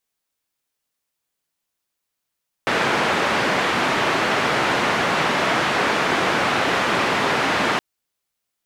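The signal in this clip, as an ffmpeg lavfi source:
-f lavfi -i "anoisesrc=c=white:d=5.12:r=44100:seed=1,highpass=f=150,lowpass=f=1800,volume=-4.4dB"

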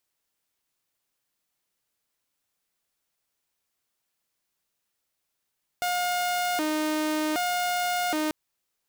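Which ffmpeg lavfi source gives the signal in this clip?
-f lavfi -i "aevalsrc='0.0794*(2*mod((511*t+203/0.65*(0.5-abs(mod(0.65*t,1)-0.5))),1)-1)':d=2.49:s=44100"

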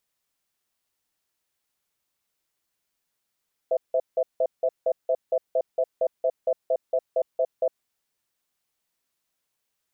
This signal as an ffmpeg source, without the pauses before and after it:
-f lavfi -i "aevalsrc='0.0794*(sin(2*PI*514*t)+sin(2*PI*655*t))*clip(min(mod(t,0.23),0.06-mod(t,0.23))/0.005,0,1)':d=4.13:s=44100"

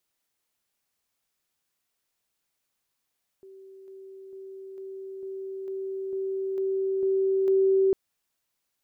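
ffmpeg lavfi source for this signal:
-f lavfi -i "aevalsrc='pow(10,(-45+3*floor(t/0.45))/20)*sin(2*PI*385*t)':d=4.5:s=44100"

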